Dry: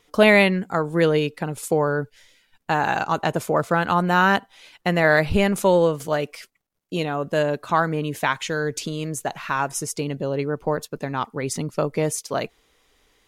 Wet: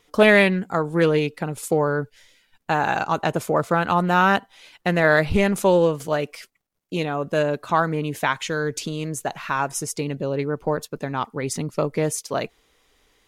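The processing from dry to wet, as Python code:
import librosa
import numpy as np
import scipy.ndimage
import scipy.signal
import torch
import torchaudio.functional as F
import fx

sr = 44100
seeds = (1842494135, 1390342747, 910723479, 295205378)

y = fx.doppler_dist(x, sr, depth_ms=0.18)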